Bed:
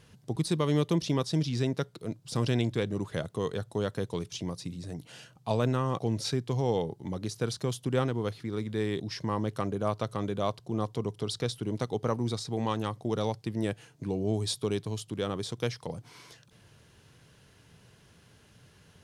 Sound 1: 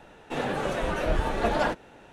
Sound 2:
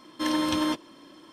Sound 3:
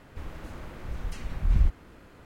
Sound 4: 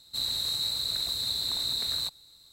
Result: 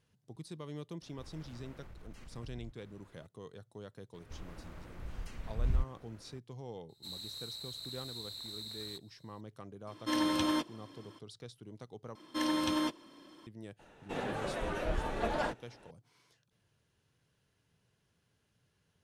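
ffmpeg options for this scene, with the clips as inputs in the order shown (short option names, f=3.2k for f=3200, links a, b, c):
-filter_complex "[3:a]asplit=2[a][b];[2:a]asplit=2[c][d];[0:a]volume=-17.5dB[e];[a]acompressor=threshold=-35dB:ratio=6:attack=3.2:release=140:knee=1:detection=peak[f];[e]asplit=2[g][h];[g]atrim=end=12.154[i];[d]atrim=end=1.32,asetpts=PTS-STARTPTS,volume=-6dB[j];[h]atrim=start=13.466[k];[f]atrim=end=2.25,asetpts=PTS-STARTPTS,volume=-11.5dB,afade=t=in:d=0.004:c=hsin,afade=t=out:st=2.246:d=0.004:c=hsin,adelay=1020[l];[b]atrim=end=2.25,asetpts=PTS-STARTPTS,volume=-8.5dB,afade=t=in:d=0.004:c=hsin,afade=t=out:st=2.246:d=0.004:c=hsin,adelay=4140[m];[4:a]atrim=end=2.52,asetpts=PTS-STARTPTS,volume=-15dB,afade=t=in:d=0.004:c=hsin,afade=t=out:st=2.516:d=0.004:c=hsin,adelay=6890[n];[c]atrim=end=1.32,asetpts=PTS-STARTPTS,volume=-5dB,afade=t=in:d=0.004:c=hsin,afade=t=out:st=1.316:d=0.004:c=hsin,adelay=9870[o];[1:a]atrim=end=2.12,asetpts=PTS-STARTPTS,volume=-8.5dB,afade=t=in:d=0.004:c=hsin,afade=t=out:st=2.116:d=0.004:c=hsin,adelay=13790[p];[i][j]acrossfade=d=0.004:c1=hsin:c2=hsin[q];[q][k]acrossfade=d=0.004:c1=hsin:c2=hsin[r];[r][l][m][n][o][p]amix=inputs=6:normalize=0"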